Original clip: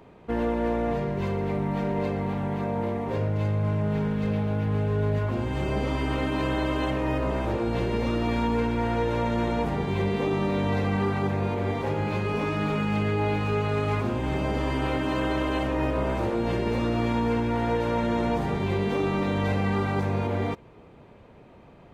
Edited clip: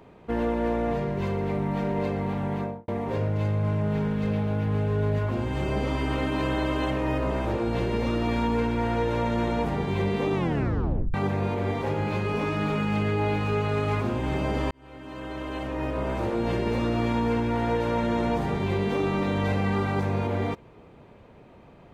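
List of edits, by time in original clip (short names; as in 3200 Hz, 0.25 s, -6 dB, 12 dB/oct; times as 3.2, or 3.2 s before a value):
2.57–2.88 studio fade out
10.35 tape stop 0.79 s
14.71–16.44 fade in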